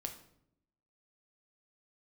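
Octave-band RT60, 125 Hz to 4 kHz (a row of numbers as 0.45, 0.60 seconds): 1.0, 1.1, 0.85, 0.65, 0.55, 0.50 seconds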